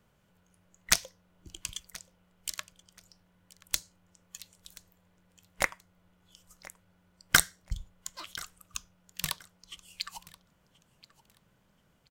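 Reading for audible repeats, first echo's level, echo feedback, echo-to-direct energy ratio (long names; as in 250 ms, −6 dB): 2, −21.0 dB, 24%, −21.0 dB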